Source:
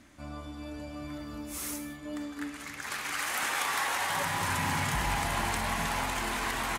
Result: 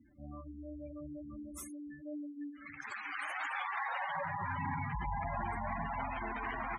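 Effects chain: spectral gate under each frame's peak -10 dB strong; Chebyshev shaper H 5 -41 dB, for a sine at -20.5 dBFS; dynamic bell 630 Hz, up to +4 dB, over -50 dBFS, Q 3.2; trim -5 dB

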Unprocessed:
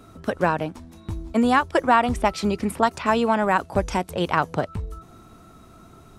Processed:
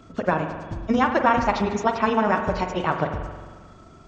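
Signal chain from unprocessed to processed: knee-point frequency compression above 2.6 kHz 1.5:1; granular stretch 0.66×, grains 73 ms; spring tank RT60 1.5 s, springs 44 ms, chirp 60 ms, DRR 5.5 dB

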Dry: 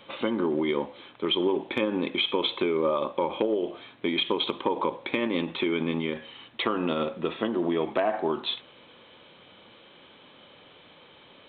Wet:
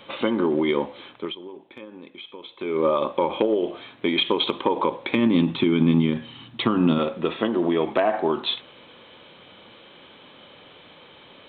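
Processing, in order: 1.10–2.83 s: dip -19 dB, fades 0.26 s; 5.15–6.99 s: graphic EQ 125/250/500/2000 Hz +12/+6/-7/-5 dB; trim +4.5 dB

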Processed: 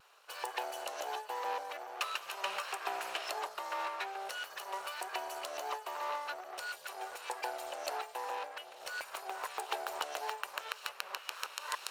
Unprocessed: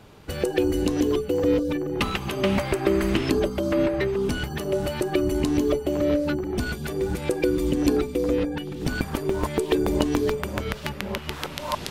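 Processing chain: comb filter that takes the minimum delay 0.73 ms; inverse Chebyshev high-pass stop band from 280 Hz, stop band 40 dB; vibrato 0.41 Hz 12 cents; trim -7.5 dB

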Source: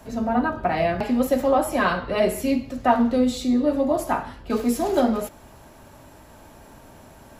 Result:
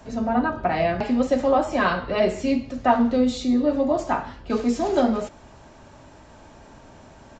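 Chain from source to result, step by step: resampled via 16 kHz

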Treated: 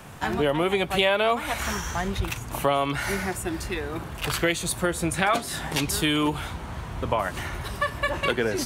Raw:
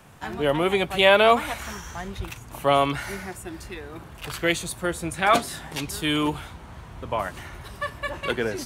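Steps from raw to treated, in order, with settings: compression 4:1, threshold -28 dBFS, peak gain reduction 14 dB; trim +7 dB

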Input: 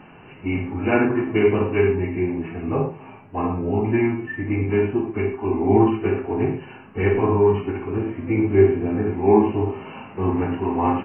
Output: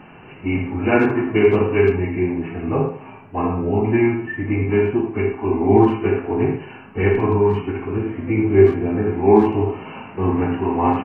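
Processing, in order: speakerphone echo 80 ms, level -9 dB; 7.15–8.46 s: dynamic bell 620 Hz, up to -4 dB, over -29 dBFS, Q 0.93; trim +2.5 dB

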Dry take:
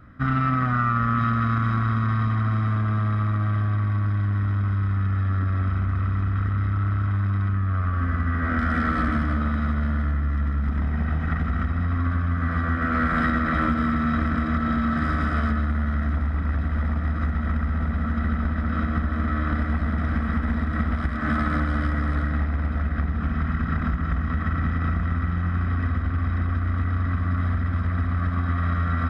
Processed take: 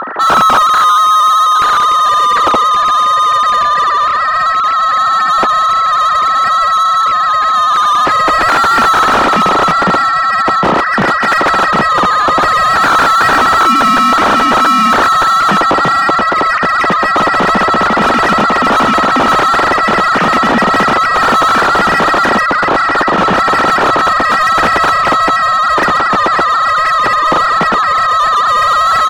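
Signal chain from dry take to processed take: formants replaced by sine waves; overdrive pedal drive 33 dB, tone 2.2 kHz, clips at -5.5 dBFS; harmony voices -3 st -10 dB; trim +3 dB

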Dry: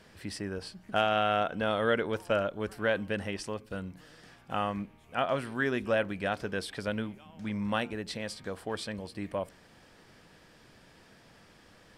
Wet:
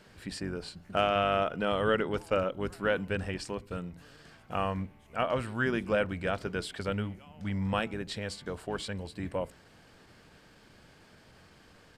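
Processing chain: octave divider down 1 oct, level -6 dB; pitch shift -1 st

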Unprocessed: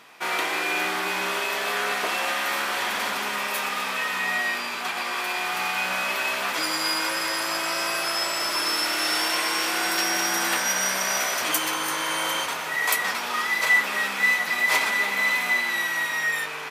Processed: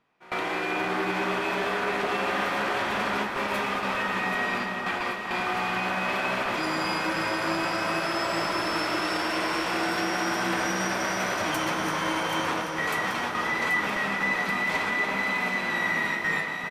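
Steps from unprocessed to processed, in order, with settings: gate with hold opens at -17 dBFS; RIAA curve playback; peak limiter -20 dBFS, peak gain reduction 6.5 dB; echo whose repeats swap between lows and highs 391 ms, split 1.7 kHz, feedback 79%, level -5 dB; on a send at -11 dB: reverberation RT60 5.0 s, pre-delay 102 ms; on the sum: resampled via 32 kHz

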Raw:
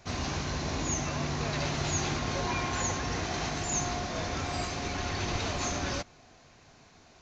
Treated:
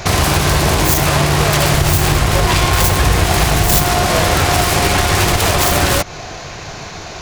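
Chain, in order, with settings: self-modulated delay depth 0.4 ms; 1.72–3.82 s: bass shelf 83 Hz +11.5 dB; compression 5:1, threshold -38 dBFS, peak gain reduction 13 dB; peaking EQ 250 Hz -13.5 dB 0.25 oct; loudness maximiser +29.5 dB; trim -1 dB

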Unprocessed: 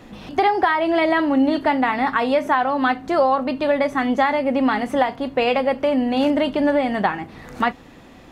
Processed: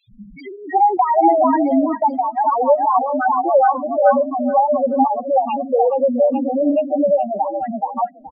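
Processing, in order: three bands offset in time highs, lows, mids 80/360 ms, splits 260/2500 Hz; loudest bins only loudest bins 2; on a send: repeats whose band climbs or falls 425 ms, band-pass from 1 kHz, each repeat 0.7 oct, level -1 dB; 0.97–3.08 s: on the sum: gate -27 dBFS, range -12 dB; trim +7 dB

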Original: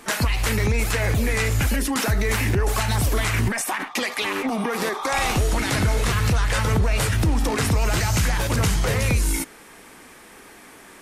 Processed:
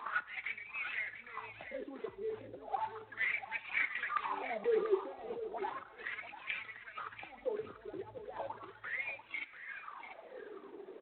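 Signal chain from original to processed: reverb removal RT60 1.3 s; compressor with a negative ratio -32 dBFS, ratio -1; wah-wah 0.35 Hz 380–2500 Hz, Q 9; delay 691 ms -11.5 dB; reverberation RT60 0.95 s, pre-delay 4 ms, DRR 15 dB; trim +4.5 dB; G.726 24 kbps 8 kHz

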